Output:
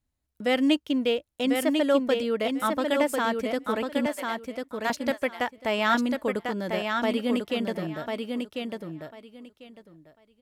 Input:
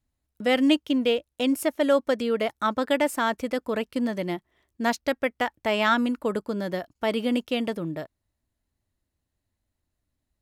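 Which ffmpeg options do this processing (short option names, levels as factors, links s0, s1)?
-filter_complex "[0:a]asettb=1/sr,asplit=3[s0][s1][s2];[s0]atrim=end=4.064[s3];[s1]atrim=start=4.06:end=4.9,asetpts=PTS-STARTPTS,afade=t=in:d=0.004:c=qsin,afade=t=out:st=0.836:d=0.004:c=qsin,highpass=f=660:w=0.5412,highpass=f=660:w=1.3066[s4];[s2]atrim=start=4.896[s5];[s3][s4]acrossfade=d=0.004:c1=hsin:c2=qsin[s6];[s6][s5]acrossfade=d=0.004:c1=qsin:c2=hsin,aecho=1:1:1046|2092|3138:0.596|0.107|0.0193,volume=0.794"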